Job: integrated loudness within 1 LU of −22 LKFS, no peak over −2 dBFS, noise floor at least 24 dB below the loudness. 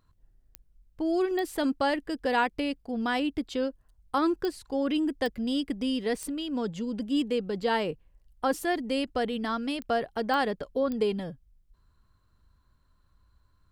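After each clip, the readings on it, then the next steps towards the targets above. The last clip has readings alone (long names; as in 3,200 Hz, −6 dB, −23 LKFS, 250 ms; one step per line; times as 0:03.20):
number of clicks 8; integrated loudness −29.5 LKFS; sample peak −14.0 dBFS; target loudness −22.0 LKFS
→ click removal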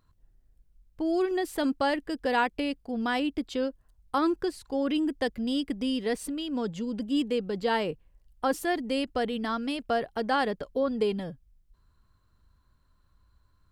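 number of clicks 0; integrated loudness −29.5 LKFS; sample peak −14.0 dBFS; target loudness −22.0 LKFS
→ level +7.5 dB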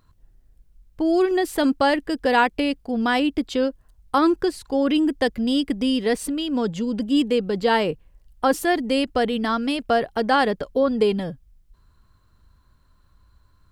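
integrated loudness −22.0 LKFS; sample peak −6.5 dBFS; background noise floor −59 dBFS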